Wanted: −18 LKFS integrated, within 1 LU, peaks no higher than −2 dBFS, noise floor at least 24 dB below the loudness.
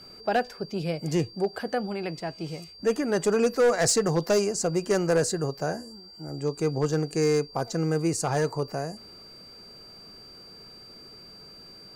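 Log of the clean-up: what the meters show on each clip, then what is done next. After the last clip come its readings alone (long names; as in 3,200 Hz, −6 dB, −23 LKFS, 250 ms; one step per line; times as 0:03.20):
share of clipped samples 0.8%; peaks flattened at −16.5 dBFS; interfering tone 4,700 Hz; level of the tone −46 dBFS; integrated loudness −26.5 LKFS; sample peak −16.5 dBFS; target loudness −18.0 LKFS
→ clipped peaks rebuilt −16.5 dBFS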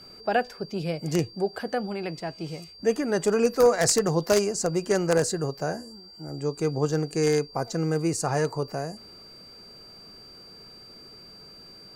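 share of clipped samples 0.0%; interfering tone 4,700 Hz; level of the tone −46 dBFS
→ notch filter 4,700 Hz, Q 30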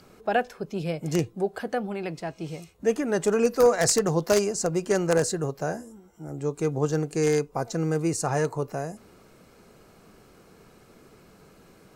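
interfering tone none found; integrated loudness −26.0 LKFS; sample peak −7.0 dBFS; target loudness −18.0 LKFS
→ level +8 dB
brickwall limiter −2 dBFS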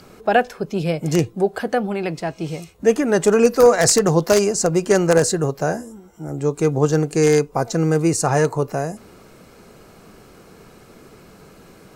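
integrated loudness −18.5 LKFS; sample peak −2.0 dBFS; background noise floor −47 dBFS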